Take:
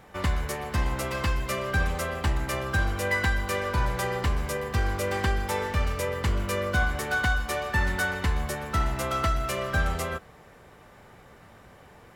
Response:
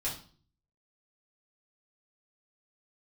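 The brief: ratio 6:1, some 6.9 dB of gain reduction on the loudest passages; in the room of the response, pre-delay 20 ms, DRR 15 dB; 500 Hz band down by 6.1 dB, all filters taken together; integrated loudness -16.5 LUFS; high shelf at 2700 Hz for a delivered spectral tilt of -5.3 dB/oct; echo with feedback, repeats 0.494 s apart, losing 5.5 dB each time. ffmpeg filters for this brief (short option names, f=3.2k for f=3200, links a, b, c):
-filter_complex "[0:a]equalizer=f=500:t=o:g=-7,highshelf=f=2.7k:g=-8,acompressor=threshold=-28dB:ratio=6,aecho=1:1:494|988|1482|1976|2470|2964|3458:0.531|0.281|0.149|0.079|0.0419|0.0222|0.0118,asplit=2[a][b];[1:a]atrim=start_sample=2205,adelay=20[c];[b][c]afir=irnorm=-1:irlink=0,volume=-18.5dB[d];[a][d]amix=inputs=2:normalize=0,volume=16.5dB"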